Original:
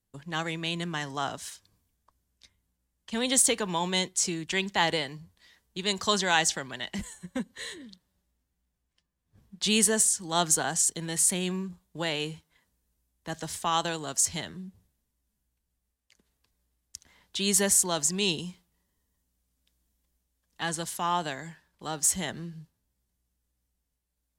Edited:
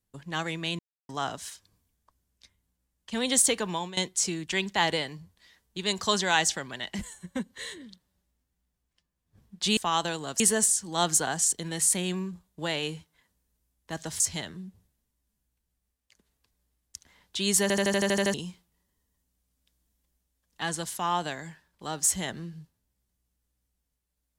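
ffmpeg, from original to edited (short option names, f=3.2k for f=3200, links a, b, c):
-filter_complex "[0:a]asplit=16[a][b][c][d][e][f][g][h][i][j][k][l][m][n][o][p];[a]atrim=end=0.79,asetpts=PTS-STARTPTS,afade=t=out:st=0.786:d=0.004:c=hsin[q];[b]atrim=start=0.79:end=1.09,asetpts=PTS-STARTPTS,volume=0[r];[c]atrim=start=1.09:end=3.97,asetpts=PTS-STARTPTS,afade=t=in:d=0.004:c=hsin,afade=t=out:st=2.6:d=0.28:silence=0.149624[s];[d]atrim=start=3.97:end=9.772,asetpts=PTS-STARTPTS,afade=t=in:d=0.004:c=hsin:silence=0.149624[t];[e]atrim=start=13.568:end=14.202[u];[f]atrim=start=9.768:end=13.572[v];[g]atrim=start=14.198:end=17.702[w];[h]atrim=start=17.618:end=17.702[x];[i]atrim=start=17.618:end=17.702[y];[j]atrim=start=17.618:end=17.702[z];[k]atrim=start=17.618:end=17.702[aa];[l]atrim=start=17.618:end=17.702[ab];[m]atrim=start=17.618:end=17.702[ac];[n]atrim=start=17.618:end=17.702[ad];[o]atrim=start=17.618:end=17.702[ae];[p]atrim=start=18.338[af];[q][r][s][t]concat=n=4:v=0:a=1[ag];[ag][u]acrossfade=d=0.004:c1=hsin:c2=hsin[ah];[ah][v]acrossfade=d=0.004:c1=hsin:c2=hsin[ai];[ai][w]acrossfade=d=0.004:c1=hsin:c2=hsin[aj];[aj][x]acrossfade=d=0.004:c1=hsin:c2=hsin[ak];[ak][y]acrossfade=d=0.004:c1=hsin:c2=hsin[al];[al][z]acrossfade=d=0.004:c1=hsin:c2=hsin[am];[am][aa]acrossfade=d=0.004:c1=hsin:c2=hsin[an];[an][ab]acrossfade=d=0.004:c1=hsin:c2=hsin[ao];[ao][ac]acrossfade=d=0.004:c1=hsin:c2=hsin[ap];[ap][ad]acrossfade=d=0.004:c1=hsin:c2=hsin[aq];[aq][ae]acrossfade=d=0.004:c1=hsin:c2=hsin[ar];[ar][af]acrossfade=d=0.004:c1=hsin:c2=hsin"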